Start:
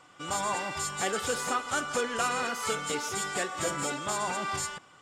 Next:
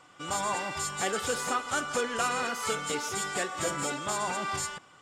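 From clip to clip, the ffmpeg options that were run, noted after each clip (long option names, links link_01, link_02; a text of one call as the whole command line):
ffmpeg -i in.wav -af anull out.wav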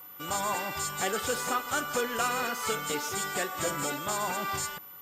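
ffmpeg -i in.wav -af "aeval=exprs='val(0)+0.00562*sin(2*PI*14000*n/s)':channel_layout=same" out.wav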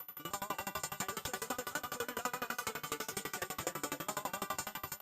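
ffmpeg -i in.wav -af "acompressor=threshold=-40dB:ratio=2.5,aecho=1:1:297|594|891|1188|1485|1782:0.562|0.276|0.135|0.0662|0.0324|0.0159,aeval=exprs='val(0)*pow(10,-28*if(lt(mod(12*n/s,1),2*abs(12)/1000),1-mod(12*n/s,1)/(2*abs(12)/1000),(mod(12*n/s,1)-2*abs(12)/1000)/(1-2*abs(12)/1000))/20)':channel_layout=same,volume=5.5dB" out.wav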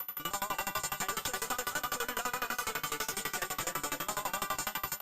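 ffmpeg -i in.wav -filter_complex "[0:a]acrossover=split=740[link_01][link_02];[link_01]aeval=exprs='(tanh(282*val(0)+0.8)-tanh(0.8))/282':channel_layout=same[link_03];[link_02]alimiter=level_in=7.5dB:limit=-24dB:level=0:latency=1:release=22,volume=-7.5dB[link_04];[link_03][link_04]amix=inputs=2:normalize=0,volume=8.5dB" out.wav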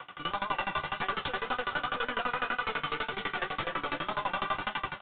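ffmpeg -i in.wav -af "flanger=delay=7.4:depth=6.5:regen=-43:speed=1.9:shape=triangular,aresample=8000,aresample=44100,volume=8dB" out.wav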